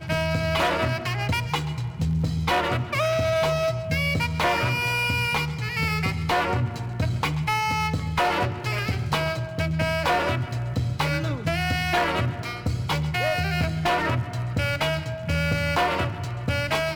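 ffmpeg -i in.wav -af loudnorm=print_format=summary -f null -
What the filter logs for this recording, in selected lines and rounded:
Input Integrated:    -24.8 LUFS
Input True Peak:     -11.8 dBTP
Input LRA:             1.7 LU
Input Threshold:     -34.8 LUFS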